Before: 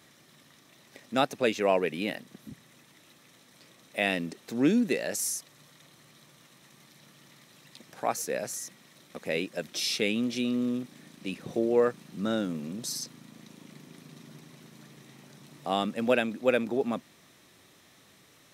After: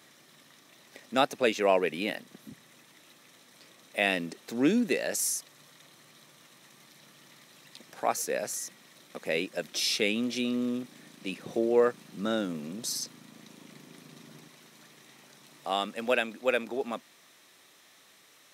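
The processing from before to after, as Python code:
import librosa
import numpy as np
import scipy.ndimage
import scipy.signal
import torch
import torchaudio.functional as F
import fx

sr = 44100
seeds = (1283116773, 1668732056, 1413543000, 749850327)

y = fx.highpass(x, sr, hz=fx.steps((0.0, 250.0), (14.48, 660.0)), slope=6)
y = y * 10.0 ** (1.5 / 20.0)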